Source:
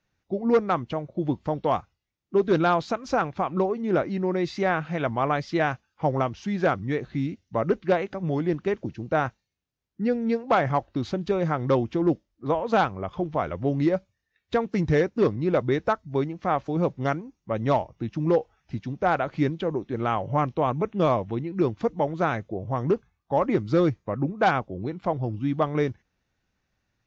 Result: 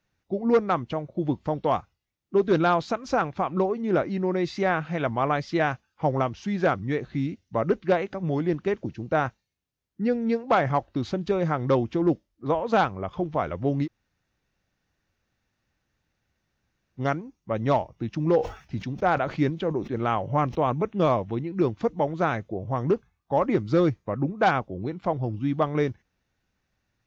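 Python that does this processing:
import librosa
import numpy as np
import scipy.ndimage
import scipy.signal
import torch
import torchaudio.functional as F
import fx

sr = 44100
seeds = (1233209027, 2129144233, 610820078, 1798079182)

y = fx.sustainer(x, sr, db_per_s=140.0, at=(18.13, 20.81), fade=0.02)
y = fx.edit(y, sr, fx.room_tone_fill(start_s=13.85, length_s=3.12, crossfade_s=0.06), tone=tone)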